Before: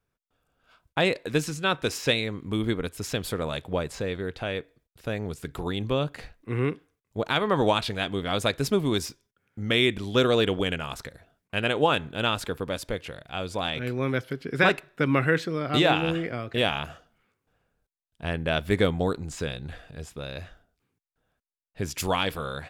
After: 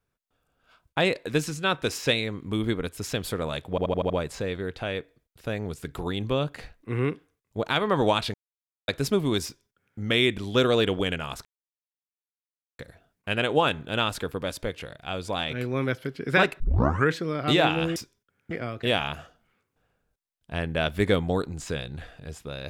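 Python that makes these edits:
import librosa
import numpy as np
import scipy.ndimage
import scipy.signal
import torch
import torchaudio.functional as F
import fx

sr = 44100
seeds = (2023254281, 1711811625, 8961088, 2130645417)

y = fx.edit(x, sr, fx.stutter(start_s=3.7, slice_s=0.08, count=6),
    fx.silence(start_s=7.94, length_s=0.54),
    fx.duplicate(start_s=9.04, length_s=0.55, to_s=16.22),
    fx.insert_silence(at_s=11.05, length_s=1.34),
    fx.tape_start(start_s=14.86, length_s=0.5), tone=tone)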